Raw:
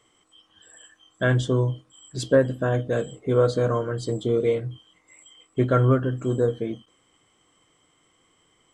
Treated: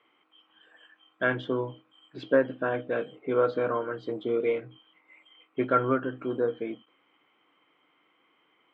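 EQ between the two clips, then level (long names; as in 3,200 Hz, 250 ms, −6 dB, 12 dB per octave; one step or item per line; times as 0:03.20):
loudspeaker in its box 260–3,200 Hz, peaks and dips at 290 Hz +4 dB, 890 Hz +5 dB, 1,400 Hz +6 dB, 2,400 Hz +9 dB
−4.5 dB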